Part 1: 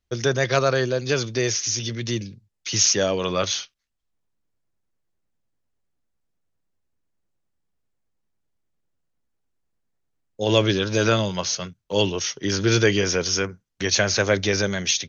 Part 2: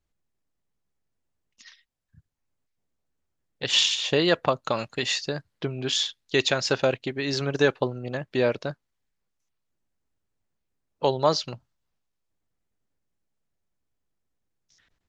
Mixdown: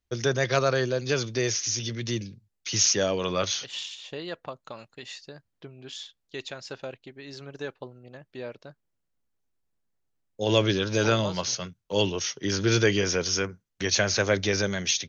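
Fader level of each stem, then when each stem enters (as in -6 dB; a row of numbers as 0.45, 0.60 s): -3.5, -14.5 dB; 0.00, 0.00 s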